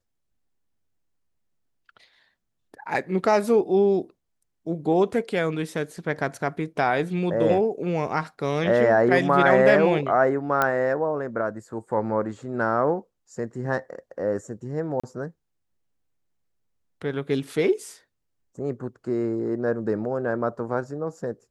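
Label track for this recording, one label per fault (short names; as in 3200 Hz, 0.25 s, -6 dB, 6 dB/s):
10.620000	10.620000	pop -8 dBFS
15.000000	15.040000	gap 35 ms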